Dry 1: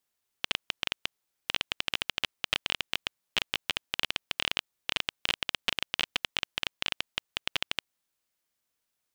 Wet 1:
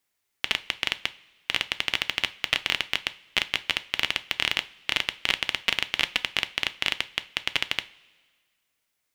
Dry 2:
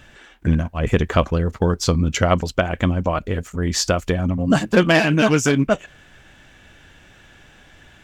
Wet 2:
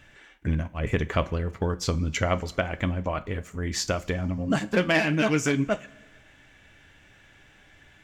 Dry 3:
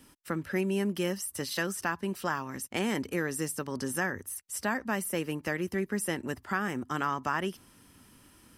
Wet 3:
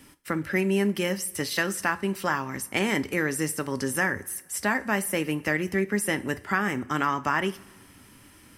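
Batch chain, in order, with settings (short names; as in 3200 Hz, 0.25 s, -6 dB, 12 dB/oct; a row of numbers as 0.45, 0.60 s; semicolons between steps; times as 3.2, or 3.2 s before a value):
bell 2100 Hz +6 dB 0.44 oct; two-slope reverb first 0.3 s, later 1.6 s, from -17 dB, DRR 11.5 dB; match loudness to -27 LUFS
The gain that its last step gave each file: +3.5, -8.5, +4.5 dB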